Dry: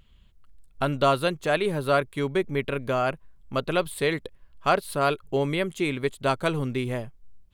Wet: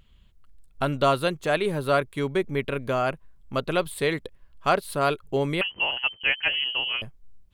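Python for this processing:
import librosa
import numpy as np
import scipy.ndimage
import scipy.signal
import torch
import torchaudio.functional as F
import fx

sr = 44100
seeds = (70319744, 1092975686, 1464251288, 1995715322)

y = fx.freq_invert(x, sr, carrier_hz=3100, at=(5.61, 7.02))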